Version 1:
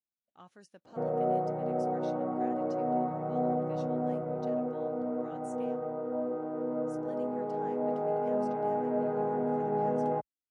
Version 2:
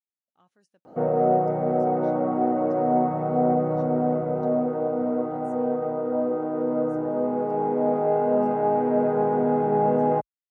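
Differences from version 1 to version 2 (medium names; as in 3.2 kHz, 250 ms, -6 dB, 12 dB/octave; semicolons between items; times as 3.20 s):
speech -9.5 dB; background +8.5 dB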